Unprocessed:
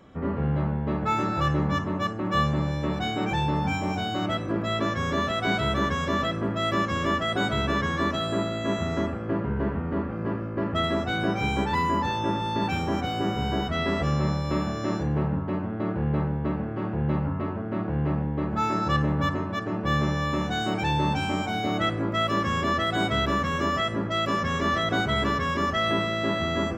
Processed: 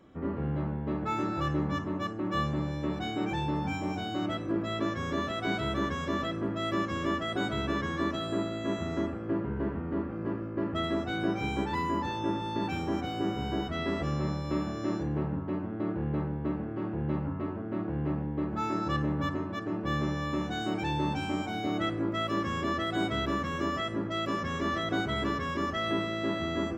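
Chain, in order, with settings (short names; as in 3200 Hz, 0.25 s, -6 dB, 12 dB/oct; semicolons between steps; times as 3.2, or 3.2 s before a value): bell 320 Hz +7.5 dB 0.46 oct; gain -7 dB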